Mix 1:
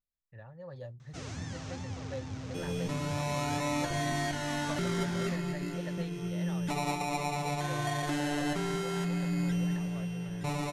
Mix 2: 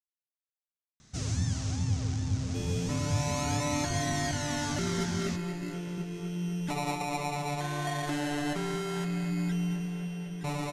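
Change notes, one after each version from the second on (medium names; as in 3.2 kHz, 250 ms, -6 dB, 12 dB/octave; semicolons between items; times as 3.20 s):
speech: muted; first sound: add tone controls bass +12 dB, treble +12 dB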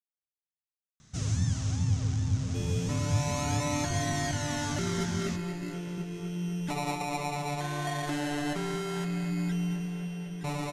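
first sound: send +11.0 dB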